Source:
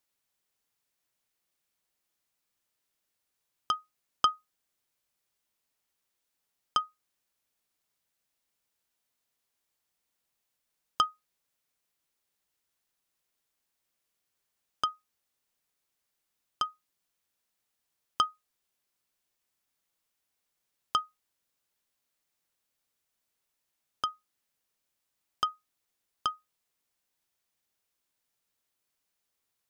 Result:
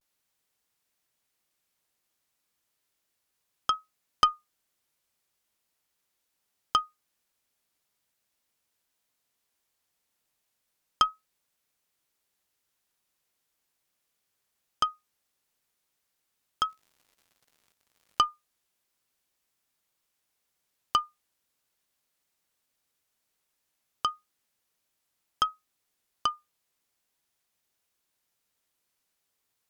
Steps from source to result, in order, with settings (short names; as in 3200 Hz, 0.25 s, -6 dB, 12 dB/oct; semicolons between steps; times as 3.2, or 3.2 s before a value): 16.68–18.21 crackle 150/s -54 dBFS; vibrato 0.37 Hz 49 cents; added harmonics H 2 -20 dB, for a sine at -8 dBFS; gain +3 dB